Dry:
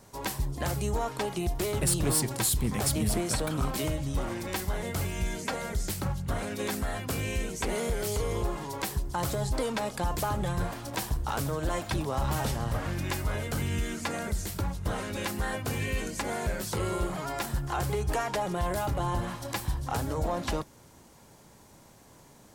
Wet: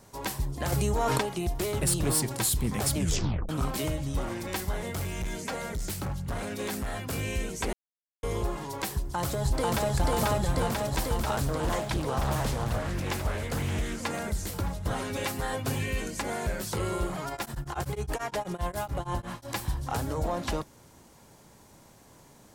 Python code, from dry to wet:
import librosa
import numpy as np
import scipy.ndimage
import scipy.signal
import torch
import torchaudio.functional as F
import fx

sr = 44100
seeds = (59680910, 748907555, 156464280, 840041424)

y = fx.env_flatten(x, sr, amount_pct=100, at=(0.72, 1.21))
y = fx.clip_hard(y, sr, threshold_db=-28.5, at=(4.79, 7.13))
y = fx.echo_throw(y, sr, start_s=8.95, length_s=0.94, ms=490, feedback_pct=80, wet_db=0.0)
y = fx.doppler_dist(y, sr, depth_ms=0.43, at=(11.37, 14.06))
y = fx.comb(y, sr, ms=7.4, depth=0.64, at=(14.9, 15.82))
y = fx.tremolo_abs(y, sr, hz=fx.line((17.29, 12.0), (19.47, 4.9)), at=(17.29, 19.47), fade=0.02)
y = fx.edit(y, sr, fx.tape_stop(start_s=2.96, length_s=0.53),
    fx.silence(start_s=7.73, length_s=0.5), tone=tone)